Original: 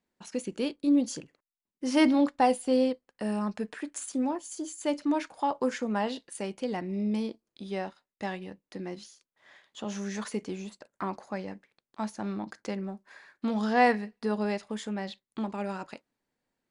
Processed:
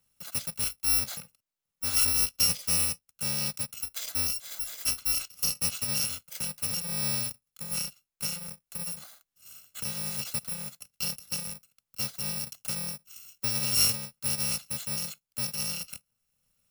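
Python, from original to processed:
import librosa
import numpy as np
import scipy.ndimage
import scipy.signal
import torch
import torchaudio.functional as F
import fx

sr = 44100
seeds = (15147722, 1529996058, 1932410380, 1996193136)

y = fx.bit_reversed(x, sr, seeds[0], block=128)
y = fx.dynamic_eq(y, sr, hz=4000.0, q=0.77, threshold_db=-46.0, ratio=4.0, max_db=7)
y = fx.band_squash(y, sr, depth_pct=40)
y = y * 10.0 ** (-1.5 / 20.0)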